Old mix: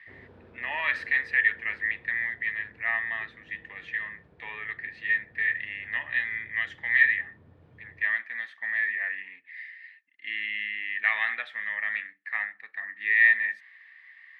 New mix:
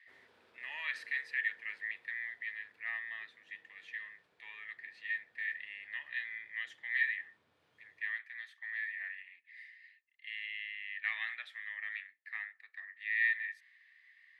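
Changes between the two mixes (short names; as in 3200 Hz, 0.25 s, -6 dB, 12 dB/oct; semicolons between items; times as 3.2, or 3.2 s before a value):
background +8.5 dB; master: add differentiator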